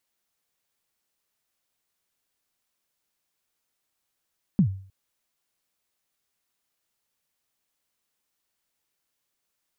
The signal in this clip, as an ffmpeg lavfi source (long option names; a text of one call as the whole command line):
ffmpeg -f lavfi -i "aevalsrc='0.237*pow(10,-3*t/0.47)*sin(2*PI*(220*0.089/log(96/220)*(exp(log(96/220)*min(t,0.089)/0.089)-1)+96*max(t-0.089,0)))':duration=0.31:sample_rate=44100" out.wav